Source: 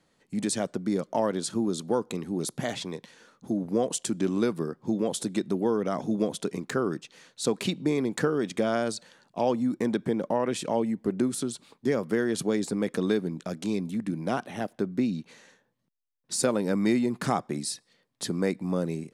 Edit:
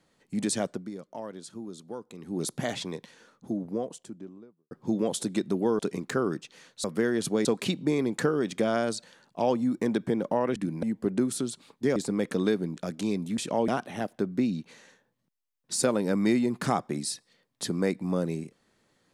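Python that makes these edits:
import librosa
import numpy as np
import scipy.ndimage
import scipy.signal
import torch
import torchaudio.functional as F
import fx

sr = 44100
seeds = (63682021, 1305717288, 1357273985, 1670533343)

y = fx.studio_fade_out(x, sr, start_s=2.92, length_s=1.79)
y = fx.edit(y, sr, fx.fade_down_up(start_s=0.66, length_s=1.76, db=-12.5, fade_s=0.25),
    fx.cut(start_s=5.79, length_s=0.6),
    fx.swap(start_s=10.55, length_s=0.3, other_s=14.01, other_length_s=0.27),
    fx.move(start_s=11.98, length_s=0.61, to_s=7.44), tone=tone)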